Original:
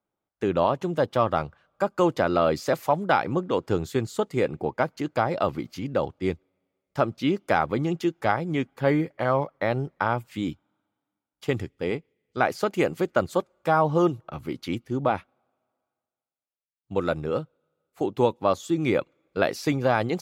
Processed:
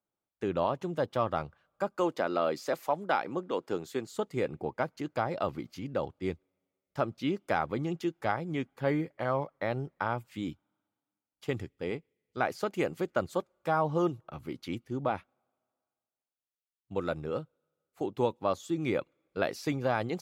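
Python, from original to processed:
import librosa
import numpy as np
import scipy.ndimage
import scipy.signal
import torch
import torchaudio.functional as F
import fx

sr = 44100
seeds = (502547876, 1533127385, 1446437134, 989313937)

y = fx.highpass(x, sr, hz=230.0, slope=12, at=(1.96, 4.12))
y = y * librosa.db_to_amplitude(-7.0)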